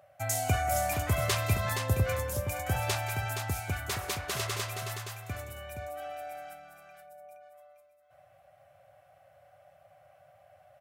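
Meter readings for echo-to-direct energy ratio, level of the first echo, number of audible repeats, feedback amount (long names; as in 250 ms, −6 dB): −6.5 dB, −16.5 dB, 2, repeats not evenly spaced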